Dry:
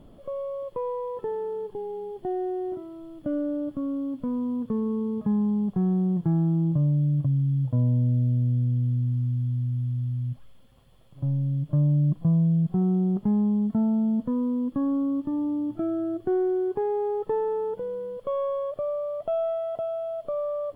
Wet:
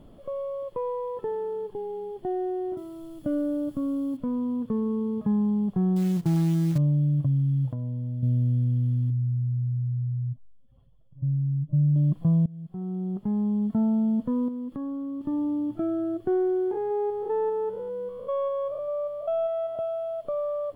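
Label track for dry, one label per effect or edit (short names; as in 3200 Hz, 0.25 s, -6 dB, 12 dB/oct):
2.770000	4.170000	tone controls bass +3 dB, treble +12 dB
5.960000	6.780000	companded quantiser 6-bit
7.680000	8.230000	compressor, threshold -28 dBFS
9.100000	11.960000	spectral contrast raised exponent 1.7
12.460000	13.830000	fade in, from -24 dB
14.480000	15.210000	compressor 5:1, threshold -31 dBFS
16.710000	19.790000	stepped spectrum every 0.2 s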